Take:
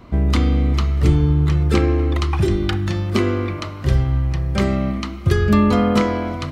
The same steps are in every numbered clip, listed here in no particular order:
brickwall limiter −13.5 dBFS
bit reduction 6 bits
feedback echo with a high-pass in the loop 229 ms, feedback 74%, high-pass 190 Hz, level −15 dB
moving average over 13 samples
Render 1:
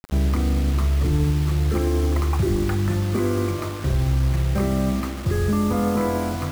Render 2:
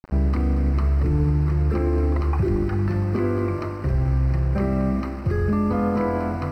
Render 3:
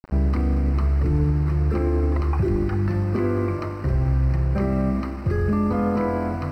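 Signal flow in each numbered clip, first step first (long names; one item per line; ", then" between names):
moving average, then brickwall limiter, then bit reduction, then feedback echo with a high-pass in the loop
feedback echo with a high-pass in the loop, then brickwall limiter, then bit reduction, then moving average
brickwall limiter, then feedback echo with a high-pass in the loop, then bit reduction, then moving average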